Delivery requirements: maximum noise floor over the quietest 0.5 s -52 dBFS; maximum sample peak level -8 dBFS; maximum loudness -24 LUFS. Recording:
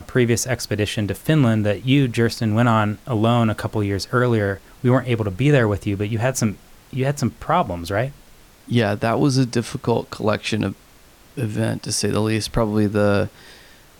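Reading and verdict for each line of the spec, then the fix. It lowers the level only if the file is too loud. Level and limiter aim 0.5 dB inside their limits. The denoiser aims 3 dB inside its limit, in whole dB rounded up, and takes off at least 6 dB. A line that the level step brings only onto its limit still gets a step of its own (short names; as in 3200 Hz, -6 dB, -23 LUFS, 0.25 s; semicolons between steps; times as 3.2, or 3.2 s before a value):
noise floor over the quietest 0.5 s -49 dBFS: fail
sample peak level -6.0 dBFS: fail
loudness -20.5 LUFS: fail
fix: gain -4 dB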